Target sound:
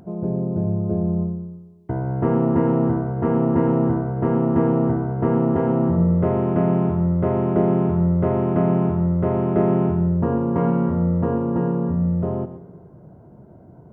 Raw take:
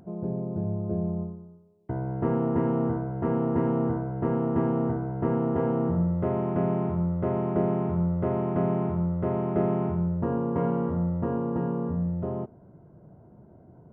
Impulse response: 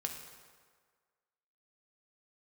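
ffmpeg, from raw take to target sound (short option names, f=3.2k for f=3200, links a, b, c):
-filter_complex "[0:a]asplit=2[a][b];[1:a]atrim=start_sample=2205,adelay=115[c];[b][c]afir=irnorm=-1:irlink=0,volume=-12.5dB[d];[a][d]amix=inputs=2:normalize=0,volume=6dB"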